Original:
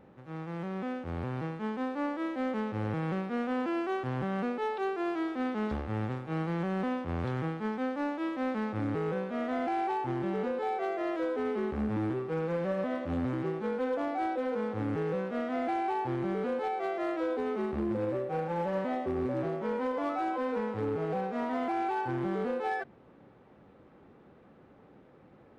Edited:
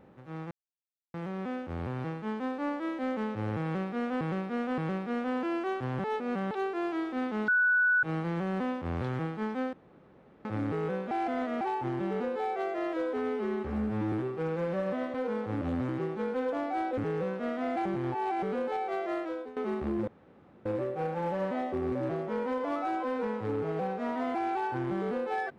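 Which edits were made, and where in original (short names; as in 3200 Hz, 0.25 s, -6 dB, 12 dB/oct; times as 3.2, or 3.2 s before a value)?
0.51 insert silence 0.63 s
3.01–3.58 loop, 3 plays
4.27–4.74 reverse
5.71–6.26 bleep 1480 Hz -21.5 dBFS
7.96–8.68 room tone
9.34–9.84 reverse
11.41–12.04 stretch 1.5×
14.42–14.89 move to 13.06
15.77–16.34 reverse
17.04–17.48 fade out, to -18 dB
17.99 insert room tone 0.58 s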